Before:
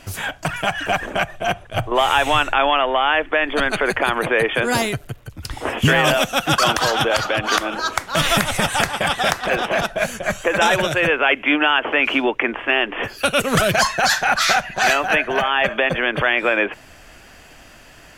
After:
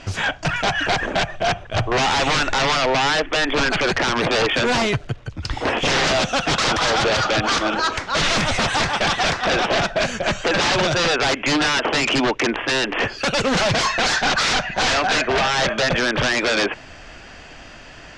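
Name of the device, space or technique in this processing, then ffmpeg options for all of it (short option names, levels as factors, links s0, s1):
synthesiser wavefolder: -af "aeval=exprs='0.133*(abs(mod(val(0)/0.133+3,4)-2)-1)':c=same,lowpass=f=6300:w=0.5412,lowpass=f=6300:w=1.3066,volume=1.68"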